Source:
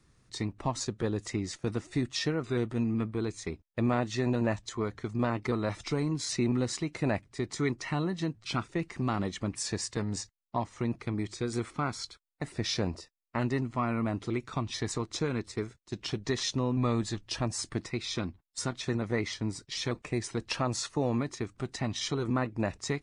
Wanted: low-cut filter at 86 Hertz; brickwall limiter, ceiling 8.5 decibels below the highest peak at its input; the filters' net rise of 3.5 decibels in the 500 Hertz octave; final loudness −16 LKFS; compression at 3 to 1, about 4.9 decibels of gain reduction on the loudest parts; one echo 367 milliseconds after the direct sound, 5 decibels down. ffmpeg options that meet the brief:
ffmpeg -i in.wav -af "highpass=86,equalizer=frequency=500:width_type=o:gain=4.5,acompressor=threshold=-29dB:ratio=3,alimiter=limit=-24dB:level=0:latency=1,aecho=1:1:367:0.562,volume=19dB" out.wav

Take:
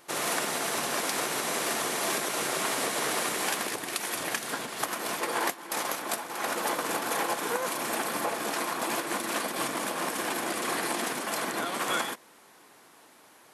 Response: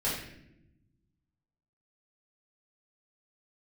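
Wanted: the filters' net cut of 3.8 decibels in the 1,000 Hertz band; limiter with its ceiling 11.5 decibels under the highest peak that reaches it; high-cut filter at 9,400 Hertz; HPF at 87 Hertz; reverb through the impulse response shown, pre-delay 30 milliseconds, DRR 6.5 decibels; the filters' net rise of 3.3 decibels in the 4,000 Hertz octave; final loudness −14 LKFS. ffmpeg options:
-filter_complex "[0:a]highpass=87,lowpass=9400,equalizer=frequency=1000:width_type=o:gain=-5,equalizer=frequency=4000:width_type=o:gain=4.5,alimiter=limit=-23.5dB:level=0:latency=1,asplit=2[link_01][link_02];[1:a]atrim=start_sample=2205,adelay=30[link_03];[link_02][link_03]afir=irnorm=-1:irlink=0,volume=-14.5dB[link_04];[link_01][link_04]amix=inputs=2:normalize=0,volume=18dB"

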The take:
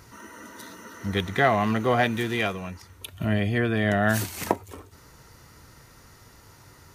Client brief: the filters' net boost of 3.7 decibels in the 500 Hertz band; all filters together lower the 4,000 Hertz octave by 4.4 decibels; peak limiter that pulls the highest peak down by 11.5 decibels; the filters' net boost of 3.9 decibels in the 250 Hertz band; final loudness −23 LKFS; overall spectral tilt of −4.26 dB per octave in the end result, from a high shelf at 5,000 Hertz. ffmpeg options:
ffmpeg -i in.wav -af "equalizer=frequency=250:width_type=o:gain=4,equalizer=frequency=500:width_type=o:gain=4,equalizer=frequency=4000:width_type=o:gain=-7.5,highshelf=frequency=5000:gain=3.5,volume=2.5dB,alimiter=limit=-11.5dB:level=0:latency=1" out.wav

